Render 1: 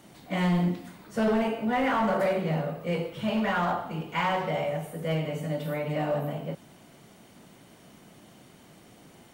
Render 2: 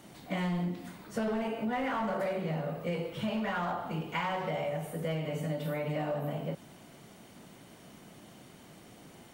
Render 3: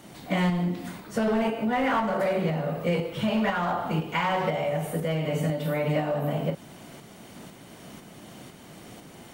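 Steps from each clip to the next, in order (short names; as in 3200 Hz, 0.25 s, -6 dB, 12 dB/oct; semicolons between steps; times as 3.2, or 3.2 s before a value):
compressor, threshold -30 dBFS, peak gain reduction 8 dB
tremolo saw up 2 Hz, depth 40%; gain +9 dB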